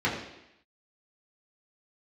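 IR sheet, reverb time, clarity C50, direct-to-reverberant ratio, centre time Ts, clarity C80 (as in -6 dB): 0.85 s, 5.0 dB, -7.0 dB, 38 ms, 7.0 dB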